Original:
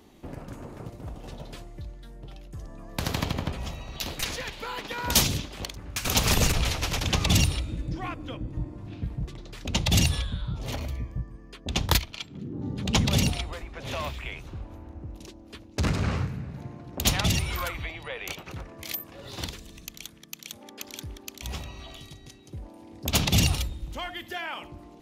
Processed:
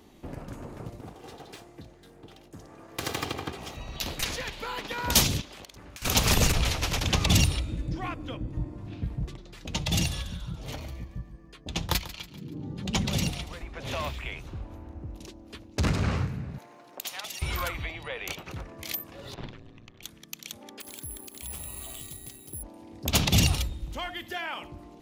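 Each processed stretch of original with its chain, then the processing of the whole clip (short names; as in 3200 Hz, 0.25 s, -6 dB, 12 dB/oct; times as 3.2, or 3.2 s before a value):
1.01–3.77 minimum comb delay 2.5 ms + HPF 130 Hz
5.41–6.02 low shelf 170 Hz -11.5 dB + compressor 10:1, threshold -41 dBFS
9.36–13.61 flange 1.1 Hz, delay 5.1 ms, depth 1.6 ms, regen +56% + feedback echo 0.142 s, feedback 46%, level -15 dB
16.58–17.42 high shelf 9200 Hz +9.5 dB + compressor 5:1, threshold -32 dBFS + HPF 550 Hz
19.34–20.03 LPF 2000 Hz + ring modulator 56 Hz
20.8–22.63 compressor 4:1, threshold -40 dBFS + careless resampling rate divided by 4×, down filtered, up zero stuff + Doppler distortion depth 0.1 ms
whole clip: dry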